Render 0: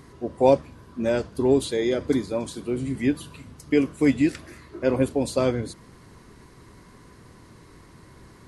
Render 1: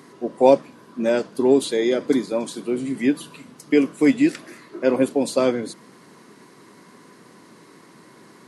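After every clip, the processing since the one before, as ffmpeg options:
-af "highpass=f=180:w=0.5412,highpass=f=180:w=1.3066,volume=3.5dB"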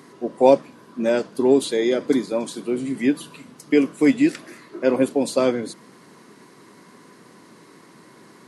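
-af anull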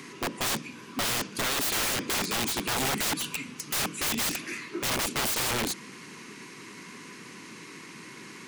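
-filter_complex "[0:a]equalizer=f=630:t=o:w=0.67:g=-11,equalizer=f=2.5k:t=o:w=0.67:g=12,equalizer=f=6.3k:t=o:w=0.67:g=7,acrossover=split=370|3000[a][b][c];[b]acompressor=threshold=-29dB:ratio=6[d];[a][d][c]amix=inputs=3:normalize=0,aeval=exprs='(mod(18.8*val(0)+1,2)-1)/18.8':c=same,volume=2.5dB"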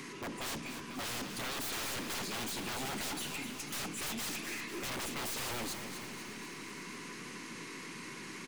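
-filter_complex "[0:a]aeval=exprs='(tanh(79.4*val(0)+0.15)-tanh(0.15))/79.4':c=same,asplit=2[a][b];[b]aecho=0:1:247|494|741|988|1235|1482|1729:0.376|0.218|0.126|0.0733|0.0425|0.0247|0.0143[c];[a][c]amix=inputs=2:normalize=0"

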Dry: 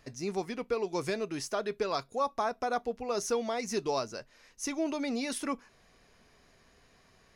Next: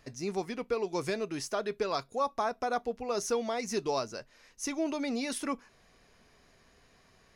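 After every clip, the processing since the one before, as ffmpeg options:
-af anull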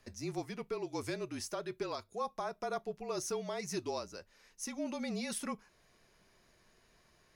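-af "highshelf=f=11k:g=9,alimiter=limit=-22dB:level=0:latency=1:release=408,afreqshift=-37,volume=-5dB"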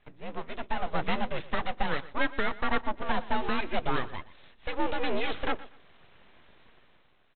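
-af "dynaudnorm=f=110:g=11:m=10dB,aresample=8000,aeval=exprs='abs(val(0))':c=same,aresample=44100,aecho=1:1:120|240:0.126|0.0277,volume=2.5dB"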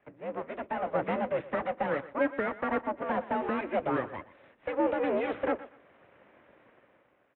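-filter_complex "[0:a]acrossover=split=190|730[a][b][c];[c]asoftclip=type=tanh:threshold=-29.5dB[d];[a][b][d]amix=inputs=3:normalize=0,highpass=110,equalizer=f=160:t=q:w=4:g=-4,equalizer=f=300:t=q:w=4:g=5,equalizer=f=550:t=q:w=4:g=9,lowpass=f=2.3k:w=0.5412,lowpass=f=2.3k:w=1.3066"

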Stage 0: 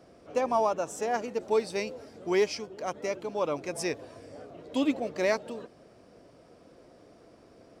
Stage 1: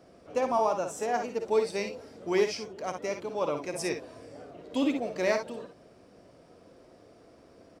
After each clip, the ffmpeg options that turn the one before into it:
-af "aecho=1:1:55|66:0.376|0.282,volume=-1dB"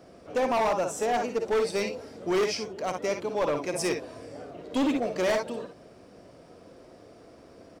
-af "asoftclip=type=hard:threshold=-26dB,volume=4.5dB"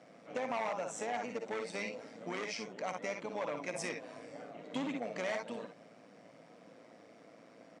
-af "tremolo=f=110:d=0.571,acompressor=threshold=-31dB:ratio=6,highpass=f=150:w=0.5412,highpass=f=150:w=1.3066,equalizer=f=380:t=q:w=4:g=-10,equalizer=f=2.1k:t=q:w=4:g=7,equalizer=f=4.9k:t=q:w=4:g=-5,lowpass=f=8.4k:w=0.5412,lowpass=f=8.4k:w=1.3066,volume=-2dB"

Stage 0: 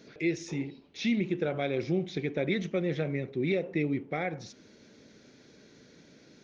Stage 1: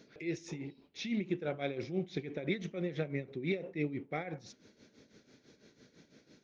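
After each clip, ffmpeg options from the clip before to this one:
-af "tremolo=f=6:d=0.72,volume=-3dB"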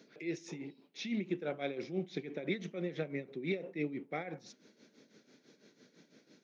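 -af "highpass=f=160:w=0.5412,highpass=f=160:w=1.3066,volume=-1dB"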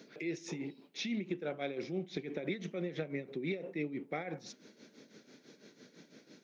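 -af "acompressor=threshold=-41dB:ratio=2.5,volume=5dB"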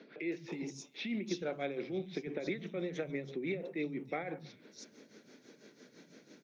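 -filter_complex "[0:a]acrossover=split=160|4000[a][b][c];[a]adelay=100[d];[c]adelay=320[e];[d][b][e]amix=inputs=3:normalize=0,volume=1dB"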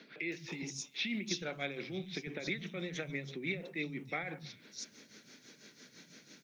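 -af "equalizer=f=440:t=o:w=2.9:g=-14,volume=8.5dB"

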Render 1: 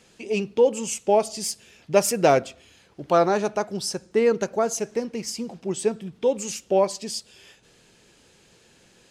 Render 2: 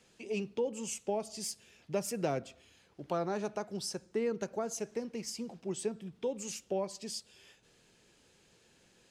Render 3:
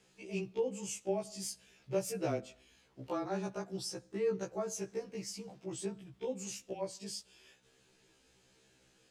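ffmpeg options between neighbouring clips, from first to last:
-filter_complex "[0:a]acrossover=split=280[a][b];[b]acompressor=threshold=-25dB:ratio=3[c];[a][c]amix=inputs=2:normalize=0,volume=-9dB"
-af "afreqshift=-18,afftfilt=real='re*1.73*eq(mod(b,3),0)':imag='im*1.73*eq(mod(b,3),0)':win_size=2048:overlap=0.75"

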